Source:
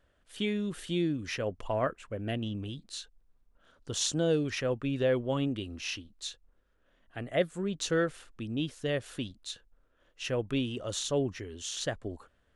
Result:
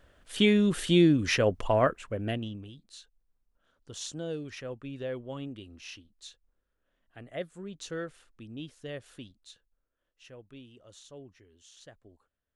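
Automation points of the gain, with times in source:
1.35 s +9 dB
2.28 s +2.5 dB
2.72 s -8.5 dB
9.12 s -8.5 dB
10.42 s -18.5 dB

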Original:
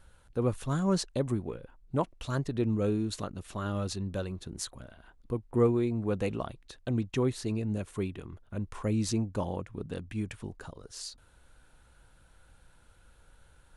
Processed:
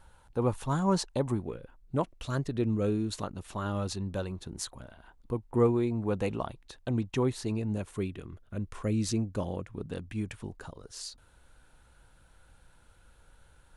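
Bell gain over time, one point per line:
bell 890 Hz 0.45 oct
+10.5 dB
from 1.4 s -1.5 dB
from 3.1 s +5.5 dB
from 7.95 s -5.5 dB
from 9.62 s +1.5 dB

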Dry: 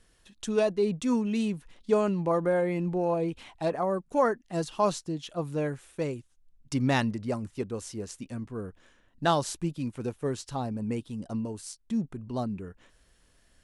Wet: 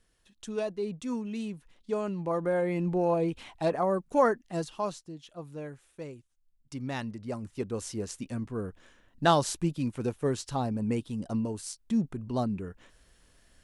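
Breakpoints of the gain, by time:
1.95 s -7 dB
2.93 s +1 dB
4.42 s +1 dB
5.01 s -10 dB
6.92 s -10 dB
7.83 s +2 dB

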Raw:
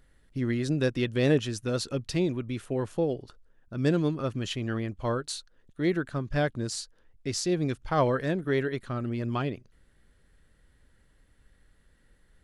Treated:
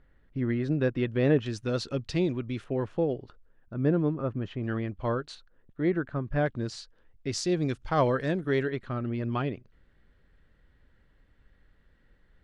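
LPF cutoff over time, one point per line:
2200 Hz
from 1.46 s 5000 Hz
from 2.64 s 2800 Hz
from 3.74 s 1400 Hz
from 4.63 s 3000 Hz
from 5.35 s 1900 Hz
from 6.46 s 3800 Hz
from 7.32 s 7100 Hz
from 8.7 s 3300 Hz

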